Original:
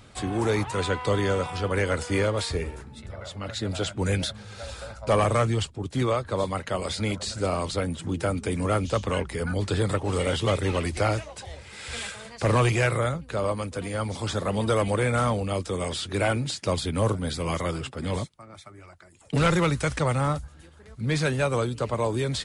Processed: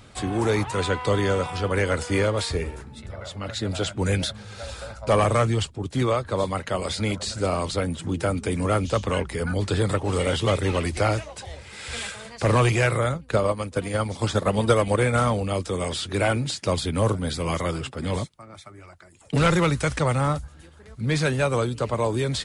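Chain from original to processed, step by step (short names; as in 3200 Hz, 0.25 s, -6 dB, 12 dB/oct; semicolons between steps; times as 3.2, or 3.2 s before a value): 13.1–15.29 transient shaper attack +8 dB, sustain -6 dB; gain +2 dB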